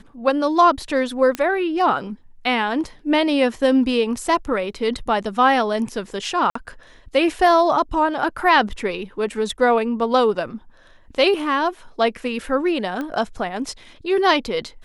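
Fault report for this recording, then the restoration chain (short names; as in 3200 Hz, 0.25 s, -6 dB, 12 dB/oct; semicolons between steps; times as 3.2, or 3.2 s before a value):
1.35 pop -10 dBFS
6.5–6.55 gap 54 ms
13.01 pop -16 dBFS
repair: de-click; interpolate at 6.5, 54 ms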